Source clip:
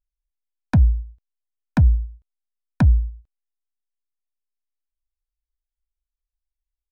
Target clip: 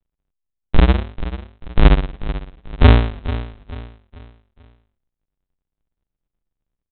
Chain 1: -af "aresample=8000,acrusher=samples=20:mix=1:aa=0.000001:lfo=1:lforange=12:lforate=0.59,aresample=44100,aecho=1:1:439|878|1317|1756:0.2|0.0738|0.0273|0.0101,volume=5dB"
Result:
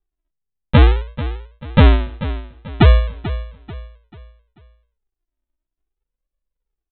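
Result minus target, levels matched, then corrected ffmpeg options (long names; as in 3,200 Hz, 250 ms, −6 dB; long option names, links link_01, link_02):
sample-and-hold swept by an LFO: distortion −21 dB
-af "aresample=8000,acrusher=samples=66:mix=1:aa=0.000001:lfo=1:lforange=39.6:lforate=0.59,aresample=44100,aecho=1:1:439|878|1317|1756:0.2|0.0738|0.0273|0.0101,volume=5dB"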